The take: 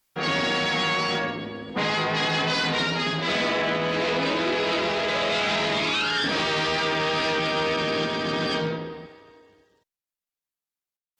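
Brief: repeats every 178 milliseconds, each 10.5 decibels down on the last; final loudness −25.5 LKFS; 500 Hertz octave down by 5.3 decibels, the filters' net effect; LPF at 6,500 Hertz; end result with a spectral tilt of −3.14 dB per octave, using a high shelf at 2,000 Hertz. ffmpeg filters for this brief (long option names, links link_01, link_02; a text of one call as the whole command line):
ffmpeg -i in.wav -af "lowpass=6500,equalizer=frequency=500:width_type=o:gain=-7,highshelf=frequency=2000:gain=5,aecho=1:1:178|356|534:0.299|0.0896|0.0269,volume=-3.5dB" out.wav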